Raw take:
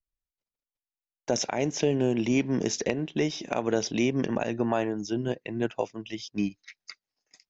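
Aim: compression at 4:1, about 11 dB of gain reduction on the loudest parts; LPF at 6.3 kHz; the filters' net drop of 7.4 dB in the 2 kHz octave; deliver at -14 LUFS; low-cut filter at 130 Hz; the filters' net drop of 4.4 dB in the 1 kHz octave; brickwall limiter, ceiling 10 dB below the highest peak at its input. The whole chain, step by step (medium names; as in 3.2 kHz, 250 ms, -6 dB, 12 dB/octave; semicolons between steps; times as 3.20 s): high-pass 130 Hz; low-pass 6.3 kHz; peaking EQ 1 kHz -5 dB; peaking EQ 2 kHz -8.5 dB; compression 4:1, threshold -35 dBFS; trim +27 dB; peak limiter -3.5 dBFS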